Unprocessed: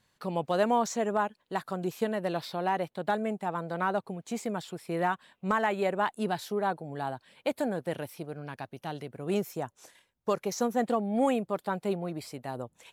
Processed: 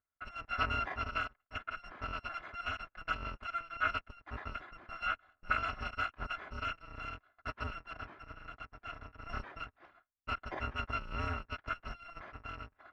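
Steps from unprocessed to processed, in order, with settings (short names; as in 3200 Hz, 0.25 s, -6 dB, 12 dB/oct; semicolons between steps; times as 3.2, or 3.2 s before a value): FFT order left unsorted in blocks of 256 samples; gate with hold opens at -47 dBFS; ladder low-pass 1800 Hz, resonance 40%; gain +12.5 dB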